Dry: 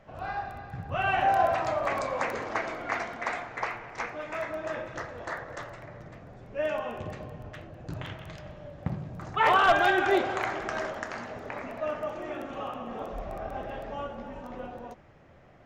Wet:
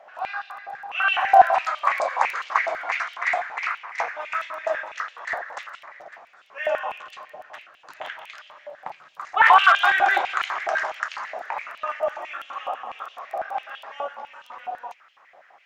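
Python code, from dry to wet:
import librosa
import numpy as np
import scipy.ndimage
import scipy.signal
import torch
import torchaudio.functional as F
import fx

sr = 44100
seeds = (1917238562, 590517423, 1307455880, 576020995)

y = fx.filter_held_highpass(x, sr, hz=12.0, low_hz=710.0, high_hz=3000.0)
y = F.gain(torch.from_numpy(y), 2.5).numpy()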